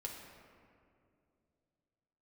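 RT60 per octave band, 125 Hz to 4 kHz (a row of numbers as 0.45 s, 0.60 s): 3.4 s, 3.1 s, 2.8 s, 2.2 s, 1.8 s, 1.2 s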